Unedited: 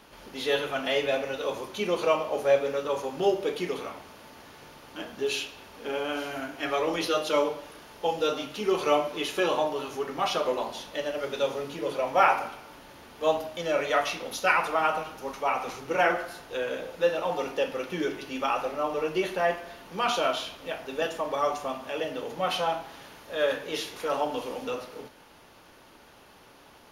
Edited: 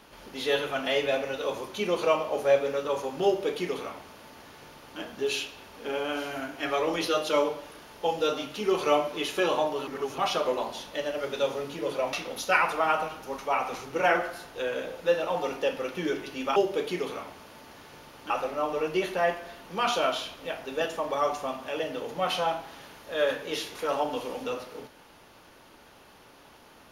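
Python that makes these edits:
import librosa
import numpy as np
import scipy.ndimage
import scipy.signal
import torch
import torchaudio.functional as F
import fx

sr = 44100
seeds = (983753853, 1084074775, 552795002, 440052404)

y = fx.edit(x, sr, fx.duplicate(start_s=3.25, length_s=1.74, to_s=18.51),
    fx.reverse_span(start_s=9.87, length_s=0.31),
    fx.cut(start_s=12.13, length_s=1.95), tone=tone)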